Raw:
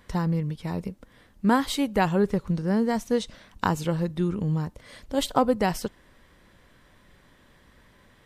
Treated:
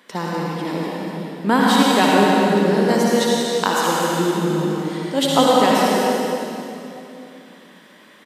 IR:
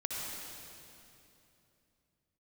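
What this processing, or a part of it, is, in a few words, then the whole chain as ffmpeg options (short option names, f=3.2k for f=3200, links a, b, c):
stadium PA: -filter_complex "[0:a]asettb=1/sr,asplit=3[a][b][c];[a]atrim=end=2.744[d];[b]atrim=start=2.74:end=3.85,asetpts=PTS-STARTPTS,afade=t=in:d=0.004:c=qsin,afade=t=out:st=1.106:d=0.004:c=qsin,bass=f=250:g=-8,treble=f=4k:g=6[e];[c]atrim=start=3.846[f];[d][e]acrossfade=d=0.004:c1=hsin:c2=qsin[g];[g][f]acrossfade=d=0.004:c1=qsin:c2=hsin,highpass=f=220:w=0.5412,highpass=f=220:w=1.3066,equalizer=f=3.1k:t=o:w=0.93:g=4,aecho=1:1:180.8|250.7:0.282|0.316[h];[1:a]atrim=start_sample=2205[i];[h][i]afir=irnorm=-1:irlink=0,volume=6.5dB"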